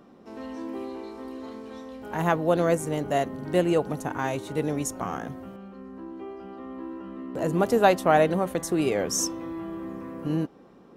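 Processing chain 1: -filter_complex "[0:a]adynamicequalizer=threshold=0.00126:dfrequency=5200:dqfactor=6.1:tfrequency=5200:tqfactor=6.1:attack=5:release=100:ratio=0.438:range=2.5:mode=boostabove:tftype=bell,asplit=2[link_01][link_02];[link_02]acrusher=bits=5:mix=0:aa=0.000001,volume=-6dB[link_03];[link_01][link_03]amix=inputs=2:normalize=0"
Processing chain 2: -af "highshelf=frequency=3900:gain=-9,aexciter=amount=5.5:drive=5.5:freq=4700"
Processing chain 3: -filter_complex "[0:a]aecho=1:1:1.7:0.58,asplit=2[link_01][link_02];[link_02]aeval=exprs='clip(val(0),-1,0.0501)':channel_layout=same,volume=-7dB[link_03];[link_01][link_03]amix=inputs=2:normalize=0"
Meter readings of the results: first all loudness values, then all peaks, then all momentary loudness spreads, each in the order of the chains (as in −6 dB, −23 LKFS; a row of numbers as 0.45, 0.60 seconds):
−22.5, −25.5, −22.0 LKFS; −1.5, −5.5, −4.5 dBFS; 20, 20, 21 LU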